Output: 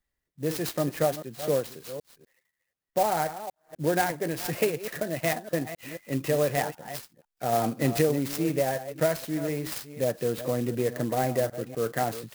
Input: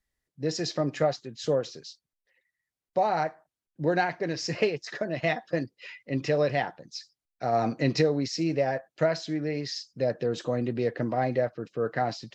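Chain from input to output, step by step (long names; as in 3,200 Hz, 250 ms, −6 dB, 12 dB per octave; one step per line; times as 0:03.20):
delay that plays each chunk backwards 250 ms, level −12 dB
converter with an unsteady clock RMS 0.051 ms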